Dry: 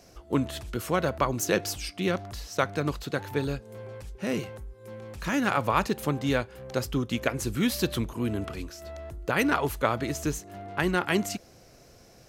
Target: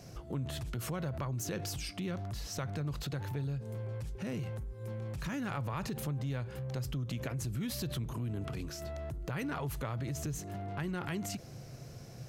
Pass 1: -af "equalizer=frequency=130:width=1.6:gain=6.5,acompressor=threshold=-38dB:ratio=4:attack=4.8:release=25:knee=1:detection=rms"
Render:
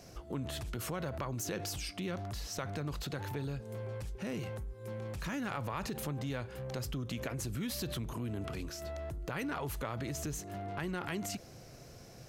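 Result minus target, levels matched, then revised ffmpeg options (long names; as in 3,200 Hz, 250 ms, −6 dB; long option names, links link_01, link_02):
125 Hz band −3.0 dB
-af "equalizer=frequency=130:width=1.6:gain=16,acompressor=threshold=-38dB:ratio=4:attack=4.8:release=25:knee=1:detection=rms"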